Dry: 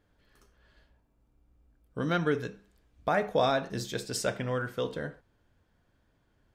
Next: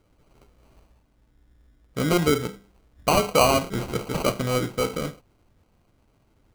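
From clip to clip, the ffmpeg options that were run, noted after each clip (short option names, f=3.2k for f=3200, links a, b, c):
-af "acrusher=samples=25:mix=1:aa=0.000001,volume=7dB"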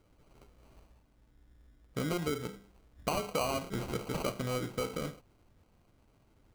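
-af "acompressor=threshold=-30dB:ratio=3,volume=-3dB"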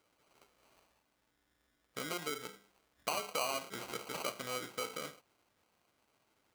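-af "highpass=f=1.1k:p=1,volume=1dB"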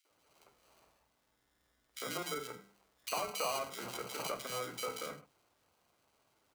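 -filter_complex "[0:a]asoftclip=type=tanh:threshold=-22dB,acrossover=split=260|2200[a][b][c];[b]adelay=50[d];[a]adelay=100[e];[e][d][c]amix=inputs=3:normalize=0,volume=2dB"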